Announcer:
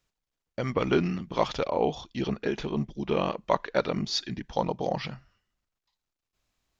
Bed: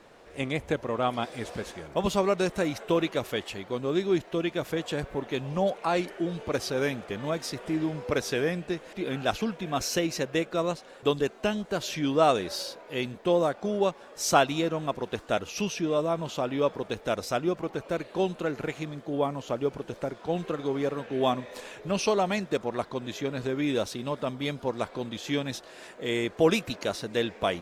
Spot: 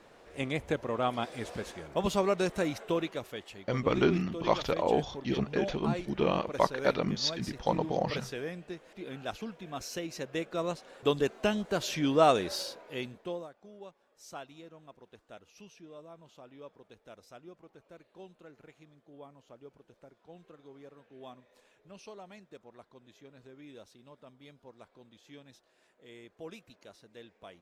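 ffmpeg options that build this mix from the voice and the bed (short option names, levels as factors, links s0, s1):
-filter_complex "[0:a]adelay=3100,volume=0.841[s0];[1:a]volume=2.11,afade=t=out:st=2.68:d=0.63:silence=0.421697,afade=t=in:st=10.06:d=1.29:silence=0.334965,afade=t=out:st=12.48:d=1.01:silence=0.0794328[s1];[s0][s1]amix=inputs=2:normalize=0"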